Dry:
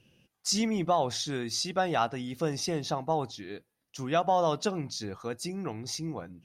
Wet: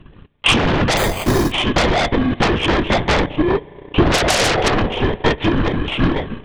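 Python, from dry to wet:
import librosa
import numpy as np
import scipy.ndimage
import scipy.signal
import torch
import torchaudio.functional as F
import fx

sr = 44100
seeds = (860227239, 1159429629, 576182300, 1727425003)

p1 = fx.bit_reversed(x, sr, seeds[0], block=32)
p2 = fx.peak_eq(p1, sr, hz=500.0, db=9.0, octaves=2.1, at=(3.37, 4.74))
p3 = fx.tube_stage(p2, sr, drive_db=13.0, bias=0.45)
p4 = fx.lpc_vocoder(p3, sr, seeds[1], excitation='whisper', order=16)
p5 = fx.rev_spring(p4, sr, rt60_s=2.0, pass_ms=(33, 59), chirp_ms=40, drr_db=13.5)
p6 = fx.fold_sine(p5, sr, drive_db=20, ceiling_db=-12.5)
p7 = p5 + (p6 * librosa.db_to_amplitude(-4.0))
p8 = fx.resample_bad(p7, sr, factor=8, down='filtered', up='hold', at=(0.97, 1.52))
p9 = fx.transient(p8, sr, attack_db=8, sustain_db=-8)
y = p9 * librosa.db_to_amplitude(2.5)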